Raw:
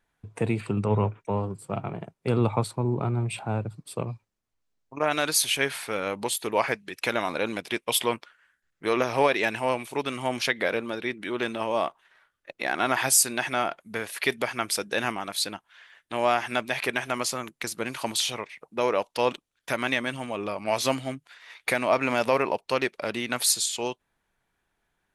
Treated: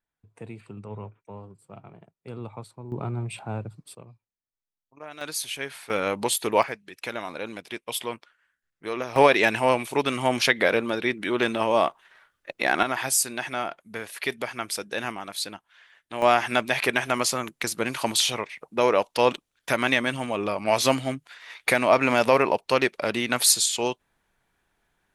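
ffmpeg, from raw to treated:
ffmpeg -i in.wav -af "asetnsamples=nb_out_samples=441:pad=0,asendcmd='2.92 volume volume -3.5dB;3.95 volume volume -16dB;5.21 volume volume -7.5dB;5.9 volume volume 3.5dB;6.63 volume volume -6dB;9.16 volume volume 5dB;12.83 volume volume -3dB;16.22 volume volume 4dB',volume=-14dB" out.wav

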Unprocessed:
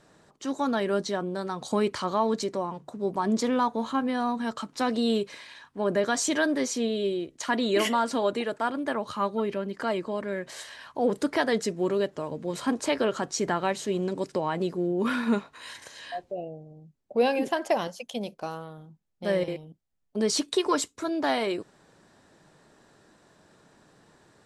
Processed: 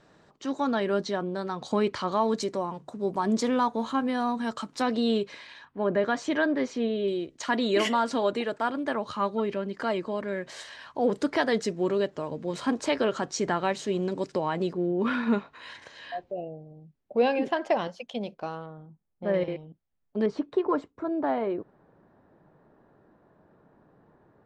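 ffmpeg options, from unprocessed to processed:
ffmpeg -i in.wav -af "asetnsamples=nb_out_samples=441:pad=0,asendcmd='2.12 lowpass f 9600;4.82 lowpass f 5100;5.65 lowpass f 2700;7.08 lowpass f 6600;14.73 lowpass f 3600;18.66 lowpass f 1500;19.34 lowpass f 2800;20.26 lowpass f 1100',lowpass=5100" out.wav

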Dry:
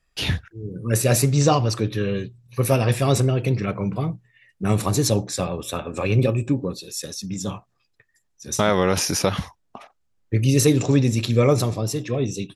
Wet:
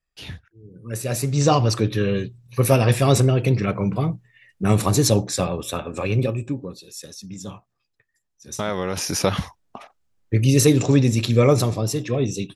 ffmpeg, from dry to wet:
ffmpeg -i in.wav -af "volume=10.5dB,afade=type=in:start_time=0.67:duration=0.54:silence=0.473151,afade=type=in:start_time=1.21:duration=0.43:silence=0.375837,afade=type=out:start_time=5.38:duration=1.25:silence=0.354813,afade=type=in:start_time=8.92:duration=0.4:silence=0.398107" out.wav

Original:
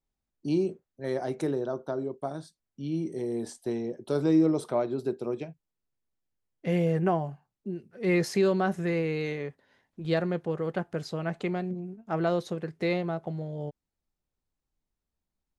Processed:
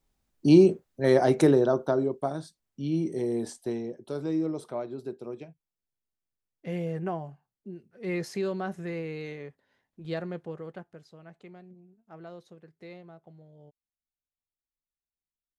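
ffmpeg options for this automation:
ffmpeg -i in.wav -af "volume=10dB,afade=type=out:start_time=1.39:duration=0.96:silence=0.446684,afade=type=out:start_time=3.26:duration=0.9:silence=0.334965,afade=type=out:start_time=10.41:duration=0.61:silence=0.266073" out.wav

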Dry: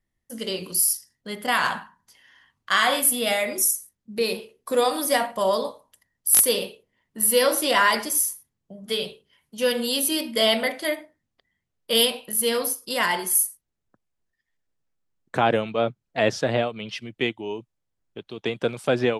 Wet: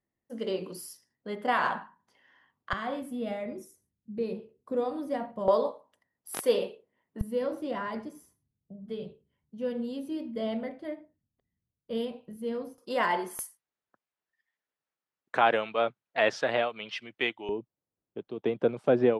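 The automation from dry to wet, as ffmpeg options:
ffmpeg -i in.wav -af "asetnsamples=nb_out_samples=441:pad=0,asendcmd='2.73 bandpass f 120;5.48 bandpass f 540;7.21 bandpass f 100;12.78 bandpass f 510;13.39 bandpass f 1400;17.49 bandpass f 370',bandpass=frequency=480:width_type=q:width=0.61:csg=0" out.wav

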